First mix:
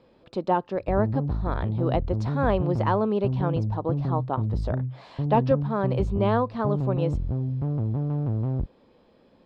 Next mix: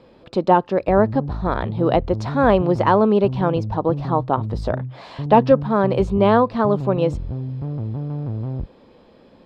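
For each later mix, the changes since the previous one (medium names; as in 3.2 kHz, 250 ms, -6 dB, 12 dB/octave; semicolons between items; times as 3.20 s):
speech +8.5 dB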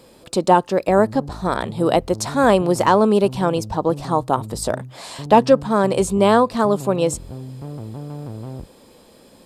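background: add bass shelf 180 Hz -10.5 dB; master: remove distance through air 270 m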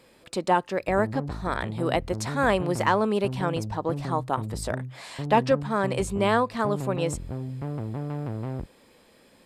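speech -9.5 dB; master: add peaking EQ 2 kHz +9.5 dB 1.1 oct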